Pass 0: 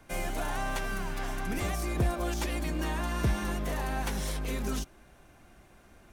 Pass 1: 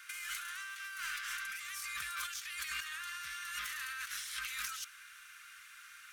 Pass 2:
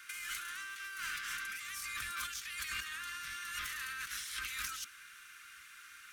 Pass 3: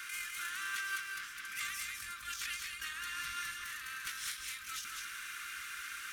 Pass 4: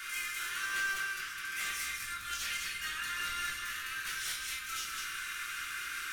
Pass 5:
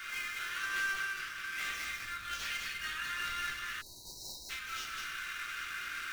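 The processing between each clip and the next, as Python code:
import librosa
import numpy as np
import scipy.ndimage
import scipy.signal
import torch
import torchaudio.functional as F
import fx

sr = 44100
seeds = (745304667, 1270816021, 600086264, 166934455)

y1 = scipy.signal.sosfilt(scipy.signal.ellip(4, 1.0, 40, 1300.0, 'highpass', fs=sr, output='sos'), x)
y1 = fx.over_compress(y1, sr, threshold_db=-48.0, ratio=-1.0)
y1 = y1 * librosa.db_to_amplitude(5.5)
y2 = fx.octave_divider(y1, sr, octaves=2, level_db=0.0)
y2 = fx.peak_eq(y2, sr, hz=77.0, db=4.5, octaves=2.5)
y3 = fx.over_compress(y2, sr, threshold_db=-46.0, ratio=-0.5)
y3 = y3 + 10.0 ** (-4.0 / 20.0) * np.pad(y3, (int(204 * sr / 1000.0), 0))[:len(y3)]
y3 = y3 * librosa.db_to_amplitude(4.0)
y4 = np.clip(10.0 ** (35.5 / 20.0) * y3, -1.0, 1.0) / 10.0 ** (35.5 / 20.0)
y4 = fx.room_shoebox(y4, sr, seeds[0], volume_m3=84.0, walls='mixed', distance_m=1.1)
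y5 = scipy.signal.medfilt(y4, 5)
y5 = fx.spec_erase(y5, sr, start_s=3.81, length_s=0.69, low_hz=1000.0, high_hz=3800.0)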